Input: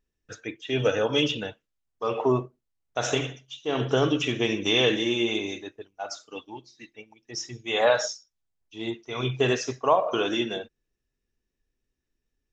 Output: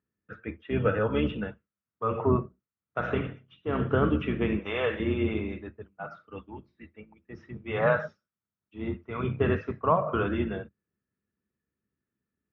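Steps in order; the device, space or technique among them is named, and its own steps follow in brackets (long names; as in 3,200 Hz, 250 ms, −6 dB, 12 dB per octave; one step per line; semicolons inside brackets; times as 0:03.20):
sub-octave bass pedal (sub-octave generator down 2 octaves, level +2 dB; loudspeaker in its box 78–2,200 Hz, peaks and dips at 200 Hz +9 dB, 770 Hz −5 dB, 1,300 Hz +8 dB)
0:04.59–0:05.00: low shelf with overshoot 400 Hz −11.5 dB, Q 1.5
level −3 dB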